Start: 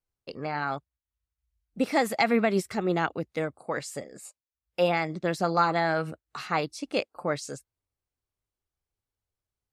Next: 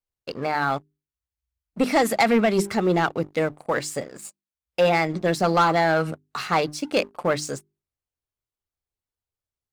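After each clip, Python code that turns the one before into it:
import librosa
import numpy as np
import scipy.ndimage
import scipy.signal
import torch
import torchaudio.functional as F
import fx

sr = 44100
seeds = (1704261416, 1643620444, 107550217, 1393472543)

y = fx.hum_notches(x, sr, base_hz=50, count=8)
y = fx.leveller(y, sr, passes=2)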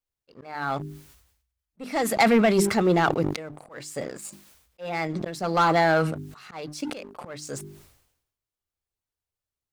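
y = fx.auto_swell(x, sr, attack_ms=463.0)
y = fx.sustainer(y, sr, db_per_s=71.0)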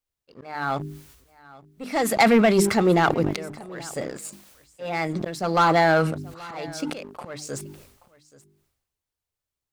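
y = x + 10.0 ** (-21.0 / 20.0) * np.pad(x, (int(829 * sr / 1000.0), 0))[:len(x)]
y = y * 10.0 ** (2.0 / 20.0)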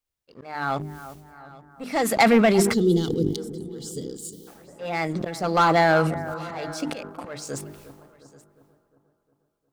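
y = fx.echo_bbd(x, sr, ms=356, stages=4096, feedback_pct=52, wet_db=-14.5)
y = fx.spec_box(y, sr, start_s=2.73, length_s=1.74, low_hz=510.0, high_hz=2900.0, gain_db=-23)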